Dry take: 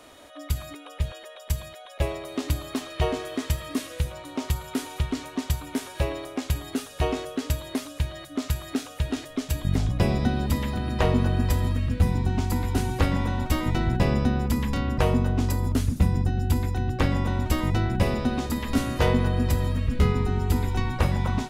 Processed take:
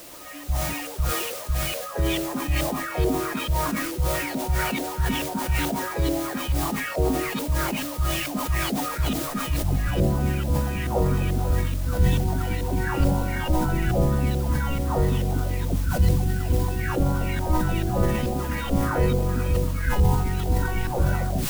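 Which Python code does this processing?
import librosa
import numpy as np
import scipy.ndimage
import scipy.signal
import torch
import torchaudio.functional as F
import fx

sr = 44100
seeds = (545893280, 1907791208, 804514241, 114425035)

p1 = fx.spec_delay(x, sr, highs='early', ms=644)
p2 = fx.formant_shift(p1, sr, semitones=-5)
p3 = fx.filter_lfo_lowpass(p2, sr, shape='saw_up', hz=2.3, low_hz=540.0, high_hz=3700.0, q=1.9)
p4 = fx.quant_dither(p3, sr, seeds[0], bits=6, dither='triangular')
p5 = p3 + (p4 * 10.0 ** (-6.5 / 20.0))
p6 = fx.sustainer(p5, sr, db_per_s=37.0)
y = p6 * 10.0 ** (-1.5 / 20.0)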